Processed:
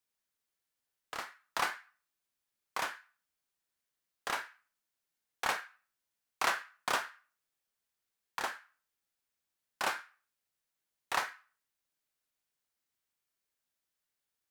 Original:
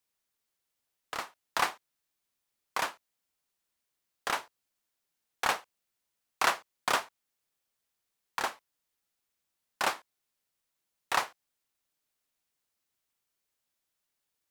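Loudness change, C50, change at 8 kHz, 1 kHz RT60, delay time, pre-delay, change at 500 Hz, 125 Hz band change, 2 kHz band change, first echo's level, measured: -4.0 dB, 10.0 dB, -4.0 dB, 0.40 s, no echo, 19 ms, -4.5 dB, -4.5 dB, -2.5 dB, no echo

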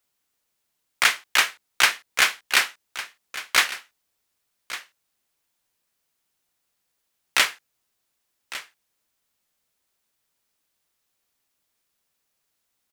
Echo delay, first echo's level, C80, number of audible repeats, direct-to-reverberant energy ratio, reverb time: 1154 ms, -15.0 dB, no reverb, 1, no reverb, no reverb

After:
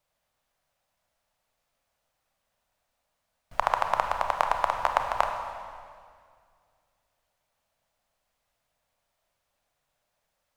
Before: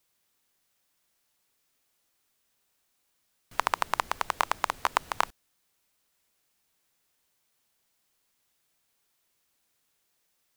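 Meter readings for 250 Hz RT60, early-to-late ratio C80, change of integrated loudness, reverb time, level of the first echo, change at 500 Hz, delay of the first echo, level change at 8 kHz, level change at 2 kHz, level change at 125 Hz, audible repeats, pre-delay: 2.5 s, 6.5 dB, +2.5 dB, 2.1 s, no echo, +7.5 dB, no echo, -7.0 dB, -0.5 dB, +4.0 dB, no echo, 26 ms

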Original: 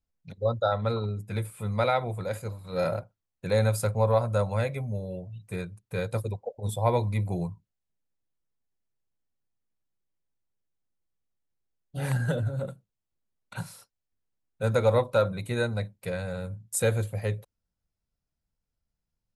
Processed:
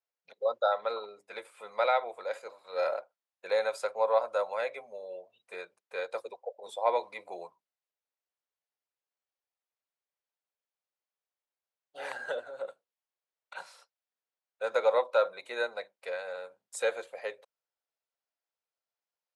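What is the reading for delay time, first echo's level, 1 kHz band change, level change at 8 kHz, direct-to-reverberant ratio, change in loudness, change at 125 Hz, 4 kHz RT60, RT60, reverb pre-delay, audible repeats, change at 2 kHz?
no echo, no echo, -0.5 dB, -11.5 dB, no reverb, -4.0 dB, under -40 dB, no reverb, no reverb, no reverb, no echo, -1.0 dB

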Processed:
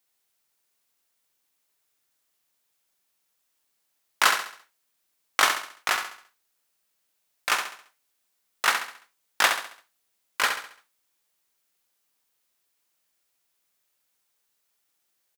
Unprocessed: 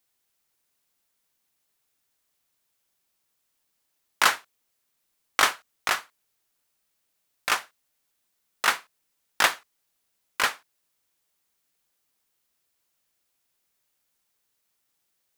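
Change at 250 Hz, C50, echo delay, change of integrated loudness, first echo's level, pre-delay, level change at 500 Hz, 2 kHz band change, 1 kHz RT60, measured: -1.5 dB, no reverb, 68 ms, +0.5 dB, -7.0 dB, no reverb, 0.0 dB, +1.0 dB, no reverb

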